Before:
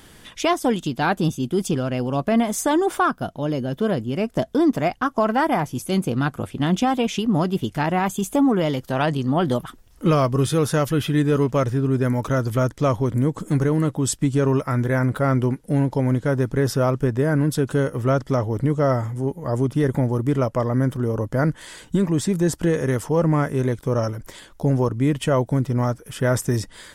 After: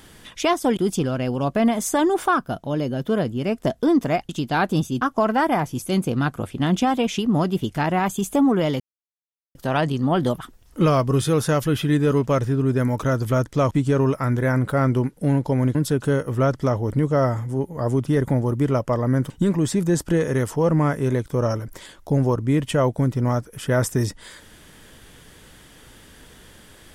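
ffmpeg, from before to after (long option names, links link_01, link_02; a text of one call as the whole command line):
ffmpeg -i in.wav -filter_complex "[0:a]asplit=8[link_01][link_02][link_03][link_04][link_05][link_06][link_07][link_08];[link_01]atrim=end=0.772[link_09];[link_02]atrim=start=1.488:end=5.012[link_10];[link_03]atrim=start=0.768:end=1.492[link_11];[link_04]atrim=start=5.008:end=8.8,asetpts=PTS-STARTPTS,afade=type=out:start_time=3.788:duration=0.004:curve=hsin,apad=pad_dur=0.75[link_12];[link_05]atrim=start=8.8:end=12.962,asetpts=PTS-STARTPTS,afade=type=in:duration=0.004:curve=hsin[link_13];[link_06]atrim=start=14.178:end=16.222[link_14];[link_07]atrim=start=17.418:end=20.972[link_15];[link_08]atrim=start=21.828[link_16];[link_09][link_10]acrossfade=duration=0.004:curve1=hsin:curve2=hsin[link_17];[link_17][link_11]acrossfade=duration=0.004:curve1=hsin:curve2=hsin[link_18];[link_12][link_13]concat=n=2:v=0:a=1[link_19];[link_18][link_19]acrossfade=duration=0.004:curve1=hsin:curve2=hsin[link_20];[link_20][link_14]acrossfade=duration=0.004:curve1=hsin:curve2=hsin[link_21];[link_21][link_15]acrossfade=duration=0.004:curve1=hsin:curve2=hsin[link_22];[link_22][link_16]acrossfade=duration=0.004:curve1=hsin:curve2=hsin" out.wav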